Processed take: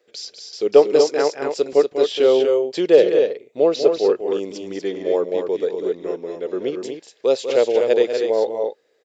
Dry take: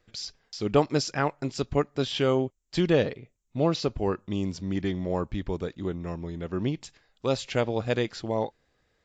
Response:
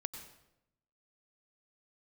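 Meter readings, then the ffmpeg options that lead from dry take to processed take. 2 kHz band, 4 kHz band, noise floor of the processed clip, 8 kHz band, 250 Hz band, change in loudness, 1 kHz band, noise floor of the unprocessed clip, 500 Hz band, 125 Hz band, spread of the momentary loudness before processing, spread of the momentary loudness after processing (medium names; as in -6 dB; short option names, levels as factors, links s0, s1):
+2.5 dB, +4.5 dB, -61 dBFS, no reading, +2.5 dB, +9.5 dB, +3.0 dB, -72 dBFS, +12.5 dB, under -10 dB, 11 LU, 13 LU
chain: -af "highpass=f=450:t=q:w=3.7,equalizer=f=1100:t=o:w=1.4:g=-6,aecho=1:1:195.3|239.1:0.355|0.501,volume=1.5"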